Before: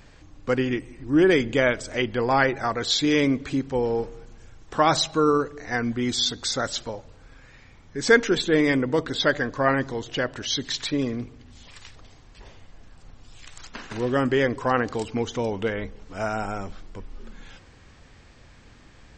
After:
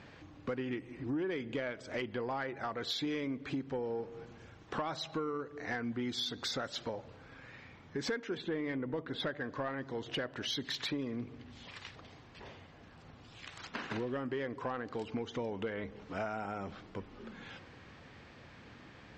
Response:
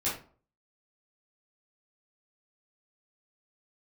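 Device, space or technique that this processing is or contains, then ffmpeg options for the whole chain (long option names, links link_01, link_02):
AM radio: -filter_complex "[0:a]asettb=1/sr,asplit=3[link_01][link_02][link_03];[link_01]atrim=end=8.374[link_04];[link_02]atrim=start=8.37:end=9.44,asetpts=PTS-STARTPTS,afade=type=in:duration=0.004:curve=qsin,afade=type=out:start_time=1.066:duration=0.004:curve=qsin,bass=frequency=250:gain=2,treble=frequency=4000:gain=-10[link_05];[link_03]atrim=start=9.436[link_06];[link_04][link_05]acrossfade=duration=0.004:curve1=hsin:curve2=qsin[link_07];[link_07][link_06]acrossfade=duration=0.004:curve1=qsin:curve2=hsin,highpass=110,lowpass=3800,acompressor=threshold=-33dB:ratio=8,asoftclip=type=tanh:threshold=-25.5dB"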